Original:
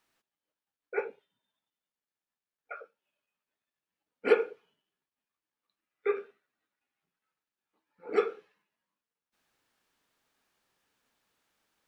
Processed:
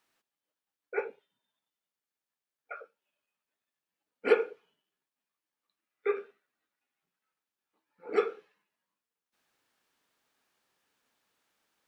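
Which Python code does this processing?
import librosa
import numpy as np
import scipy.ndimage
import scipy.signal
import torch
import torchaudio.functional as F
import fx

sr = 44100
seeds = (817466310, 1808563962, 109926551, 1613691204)

y = fx.low_shelf(x, sr, hz=110.0, db=-8.0)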